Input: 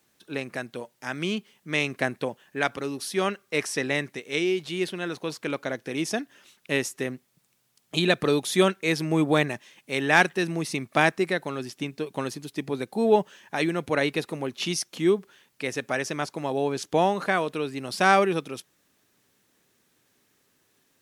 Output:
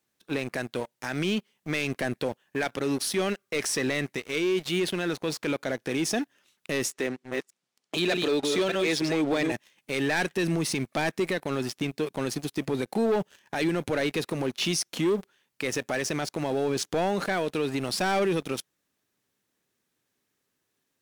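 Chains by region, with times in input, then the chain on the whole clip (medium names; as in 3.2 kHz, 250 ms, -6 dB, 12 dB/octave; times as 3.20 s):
6.90–9.52 s: chunks repeated in reverse 303 ms, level -5.5 dB + band-pass 250–7100 Hz
whole clip: dynamic bell 1.1 kHz, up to -7 dB, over -39 dBFS, Q 1.9; waveshaping leveller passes 3; peak limiter -14.5 dBFS; trim -5 dB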